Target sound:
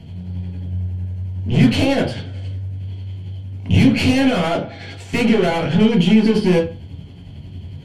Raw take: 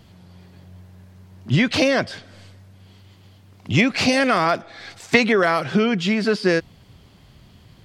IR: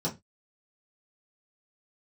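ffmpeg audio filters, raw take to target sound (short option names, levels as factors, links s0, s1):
-filter_complex "[0:a]tremolo=f=11:d=0.55,aeval=exprs='(tanh(25.1*val(0)+0.7)-tanh(0.7))/25.1':c=same[s0];[1:a]atrim=start_sample=2205,asetrate=24696,aresample=44100[s1];[s0][s1]afir=irnorm=-1:irlink=0,volume=1.12"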